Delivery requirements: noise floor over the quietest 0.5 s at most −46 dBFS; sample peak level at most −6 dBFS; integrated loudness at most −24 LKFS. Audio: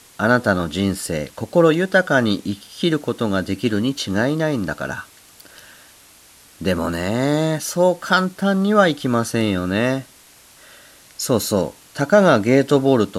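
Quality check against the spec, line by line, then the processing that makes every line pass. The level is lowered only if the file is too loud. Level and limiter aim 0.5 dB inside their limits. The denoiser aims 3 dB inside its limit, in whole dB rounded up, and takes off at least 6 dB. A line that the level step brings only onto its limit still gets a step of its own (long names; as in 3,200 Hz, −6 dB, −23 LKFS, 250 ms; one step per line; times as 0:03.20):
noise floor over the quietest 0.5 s −48 dBFS: in spec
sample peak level −2.0 dBFS: out of spec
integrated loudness −19.0 LKFS: out of spec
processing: level −5.5 dB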